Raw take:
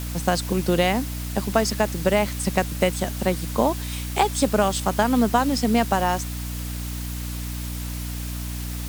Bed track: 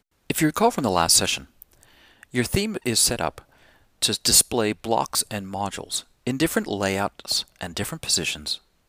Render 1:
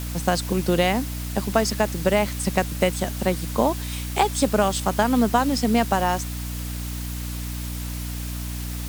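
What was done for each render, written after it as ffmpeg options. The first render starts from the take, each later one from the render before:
ffmpeg -i in.wav -af anull out.wav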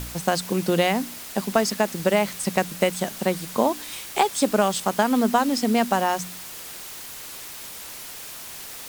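ffmpeg -i in.wav -af "bandreject=frequency=60:width_type=h:width=4,bandreject=frequency=120:width_type=h:width=4,bandreject=frequency=180:width_type=h:width=4,bandreject=frequency=240:width_type=h:width=4,bandreject=frequency=300:width_type=h:width=4" out.wav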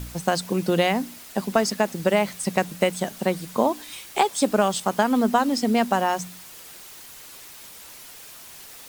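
ffmpeg -i in.wav -af "afftdn=noise_reduction=6:noise_floor=-38" out.wav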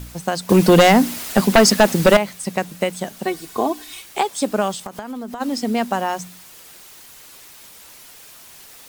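ffmpeg -i in.wav -filter_complex "[0:a]asettb=1/sr,asplit=3[link_01][link_02][link_03];[link_01]atrim=end=0.494[link_04];[link_02]atrim=start=0.49:end=2.17,asetpts=PTS-STARTPTS,afade=type=in:duration=0.004:curve=qsin,afade=type=out:start_time=1.676:duration=0.004:curve=qsin,aeval=exprs='0.562*sin(PI/2*2.82*val(0)/0.562)':channel_layout=same[link_05];[link_03]atrim=start=2.166[link_06];[link_04][link_05]acrossfade=duration=0.004:curve1=hsin:curve2=qsin[link_07];[link_07][link_06]acrossfade=duration=0.004:curve1=qsin:curve2=hsin,asettb=1/sr,asplit=3[link_08][link_09][link_10];[link_08]atrim=end=3.254[link_11];[link_09]atrim=start=3.25:end=4.02,asetpts=PTS-STARTPTS,afade=type=in:duration=0.004:curve=qsin,afade=type=out:start_time=0.766:duration=0.004:curve=qsin,aecho=1:1:2.7:0.8,atrim=end_sample=33957[link_12];[link_10]atrim=start=4.016[link_13];[link_11][link_12]acrossfade=duration=0.004:curve1=hsin:curve2=qsin[link_14];[link_14][link_13]acrossfade=duration=0.004:curve1=qsin:curve2=hsin,asplit=3[link_15][link_16][link_17];[link_15]afade=type=out:start_time=4.74:duration=0.02[link_18];[link_16]acompressor=threshold=-26dB:ratio=12:attack=3.2:release=140:knee=1:detection=peak,afade=type=in:start_time=4.74:duration=0.02,afade=type=out:start_time=5.4:duration=0.02[link_19];[link_17]afade=type=in:start_time=5.4:duration=0.02[link_20];[link_18][link_19][link_20]amix=inputs=3:normalize=0" out.wav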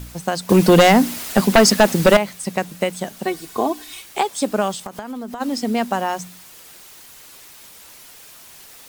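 ffmpeg -i in.wav -af "acrusher=bits=10:mix=0:aa=0.000001" out.wav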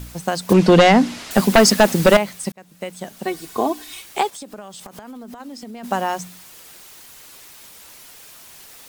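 ffmpeg -i in.wav -filter_complex "[0:a]asettb=1/sr,asplit=3[link_01][link_02][link_03];[link_01]atrim=end=0.534[link_04];[link_02]atrim=start=0.53:end=1.31,asetpts=PTS-STARTPTS,afade=type=in:duration=0.004:curve=qsin,afade=type=out:start_time=0.776:duration=0.004:curve=qsin,lowpass=5500[link_05];[link_03]atrim=start=1.306[link_06];[link_04][link_05]acrossfade=duration=0.004:curve1=hsin:curve2=qsin[link_07];[link_07][link_06]acrossfade=duration=0.004:curve1=qsin:curve2=hsin,asplit=3[link_08][link_09][link_10];[link_08]afade=type=out:start_time=4.29:duration=0.02[link_11];[link_09]acompressor=threshold=-33dB:ratio=6:attack=3.2:release=140:knee=1:detection=peak,afade=type=in:start_time=4.29:duration=0.02,afade=type=out:start_time=5.83:duration=0.02[link_12];[link_10]afade=type=in:start_time=5.83:duration=0.02[link_13];[link_11][link_12][link_13]amix=inputs=3:normalize=0,asplit=2[link_14][link_15];[link_14]atrim=end=2.52,asetpts=PTS-STARTPTS,afade=type=out:start_time=2.516:duration=0.004:curve=hsin[link_16];[link_15]atrim=start=2.52,asetpts=PTS-STARTPTS,afade=type=in:duration=0.93[link_17];[link_16][link_17]concat=n=2:v=0:a=1" out.wav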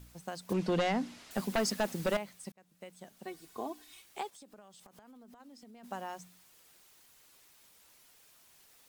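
ffmpeg -i in.wav -af "volume=-19dB" out.wav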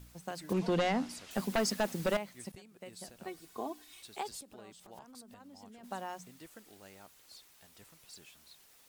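ffmpeg -i in.wav -i bed.wav -filter_complex "[1:a]volume=-31.5dB[link_01];[0:a][link_01]amix=inputs=2:normalize=0" out.wav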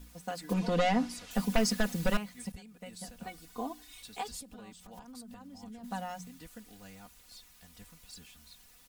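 ffmpeg -i in.wav -af "asubboost=boost=5:cutoff=160,aecho=1:1:4.1:0.87" out.wav

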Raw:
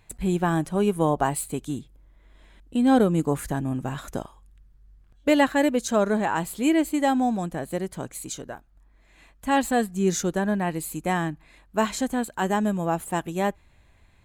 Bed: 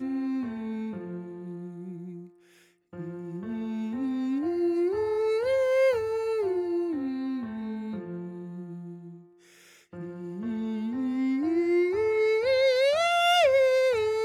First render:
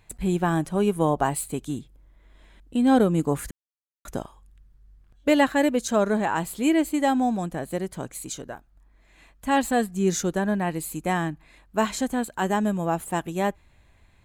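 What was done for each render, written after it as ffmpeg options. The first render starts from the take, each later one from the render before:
ffmpeg -i in.wav -filter_complex "[0:a]asplit=3[link_01][link_02][link_03];[link_01]atrim=end=3.51,asetpts=PTS-STARTPTS,afade=type=out:start_time=3.506:duration=0.004:curve=hsin[link_04];[link_02]atrim=start=3.51:end=4.05,asetpts=PTS-STARTPTS,volume=0[link_05];[link_03]atrim=start=4.05,asetpts=PTS-STARTPTS,afade=type=in:duration=0.004:curve=hsin[link_06];[link_04][link_05][link_06]concat=n=3:v=0:a=1" out.wav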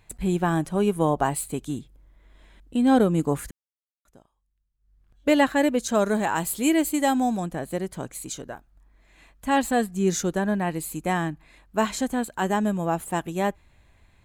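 ffmpeg -i in.wav -filter_complex "[0:a]asettb=1/sr,asplit=3[link_01][link_02][link_03];[link_01]atrim=end=5.954[link_04];[link_02]atrim=start=5.95:end=7.4,asetpts=PTS-STARTPTS,afade=type=in:duration=0.004:curve=qsin,afade=type=out:start_time=1.446:duration=0.004:curve=qsin,aemphasis=mode=production:type=cd[link_05];[link_03]atrim=start=7.396[link_06];[link_04][link_05]acrossfade=duration=0.004:curve1=hsin:curve2=qsin[link_07];[link_07][link_06]acrossfade=duration=0.004:curve1=qsin:curve2=hsin,asplit=3[link_08][link_09][link_10];[link_08]atrim=end=3.84,asetpts=PTS-STARTPTS,afade=type=out:start_time=3.34:duration=0.5:silence=0.0707946[link_11];[link_09]atrim=start=3.84:end=4.78,asetpts=PTS-STARTPTS,volume=-23dB[link_12];[link_10]atrim=start=4.78,asetpts=PTS-STARTPTS,afade=type=in:duration=0.5:silence=0.0707946[link_13];[link_11][link_12][link_13]concat=n=3:v=0:a=1" out.wav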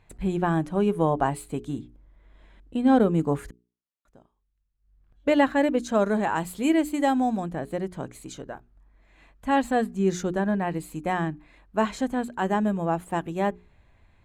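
ffmpeg -i in.wav -af "lowpass=frequency=2300:poles=1,bandreject=frequency=60:width_type=h:width=6,bandreject=frequency=120:width_type=h:width=6,bandreject=frequency=180:width_type=h:width=6,bandreject=frequency=240:width_type=h:width=6,bandreject=frequency=300:width_type=h:width=6,bandreject=frequency=360:width_type=h:width=6,bandreject=frequency=420:width_type=h:width=6" out.wav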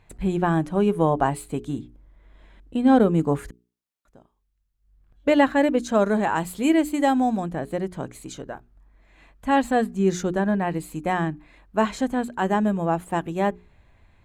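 ffmpeg -i in.wav -af "volume=2.5dB" out.wav

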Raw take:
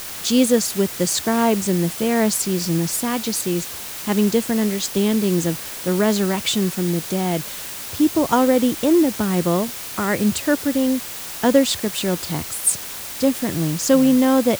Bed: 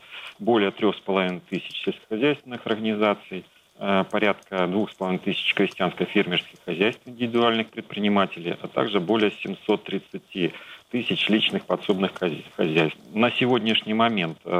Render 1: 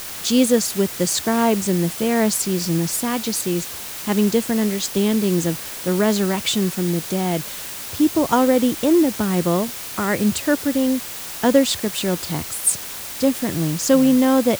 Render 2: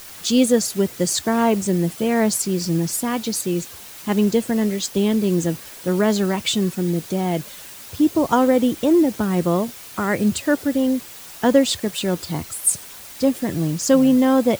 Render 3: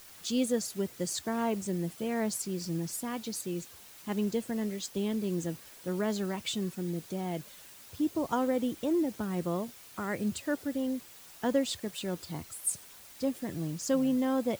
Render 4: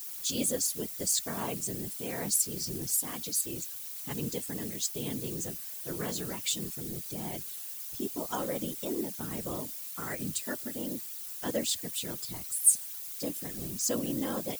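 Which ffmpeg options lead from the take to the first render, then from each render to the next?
ffmpeg -i in.wav -af anull out.wav
ffmpeg -i in.wav -af "afftdn=noise_reduction=8:noise_floor=-32" out.wav
ffmpeg -i in.wav -af "volume=-13dB" out.wav
ffmpeg -i in.wav -af "crystalizer=i=4.5:c=0,afftfilt=real='hypot(re,im)*cos(2*PI*random(0))':imag='hypot(re,im)*sin(2*PI*random(1))':win_size=512:overlap=0.75" out.wav

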